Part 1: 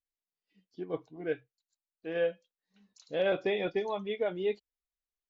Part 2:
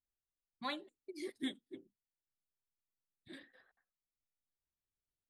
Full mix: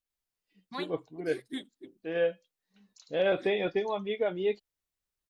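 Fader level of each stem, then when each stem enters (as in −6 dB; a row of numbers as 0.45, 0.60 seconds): +2.0, +1.5 decibels; 0.00, 0.10 seconds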